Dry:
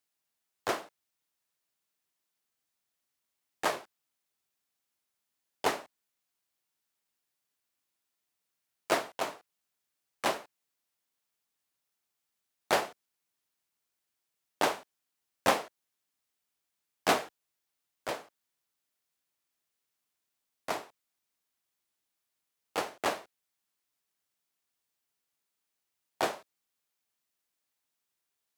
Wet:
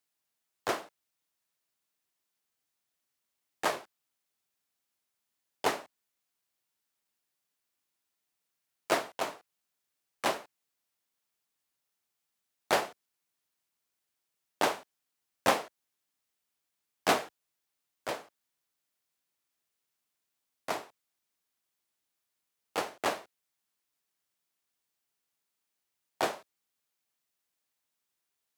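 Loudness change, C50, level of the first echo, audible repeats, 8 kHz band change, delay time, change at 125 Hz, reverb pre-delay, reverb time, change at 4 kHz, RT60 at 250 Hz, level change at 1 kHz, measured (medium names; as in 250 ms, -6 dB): 0.0 dB, no reverb, no echo, no echo, 0.0 dB, no echo, 0.0 dB, no reverb, no reverb, 0.0 dB, no reverb, 0.0 dB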